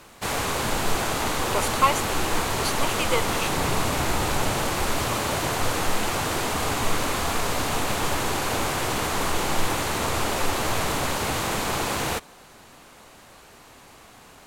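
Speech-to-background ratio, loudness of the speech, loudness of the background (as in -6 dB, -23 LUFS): -2.5 dB, -28.0 LUFS, -25.5 LUFS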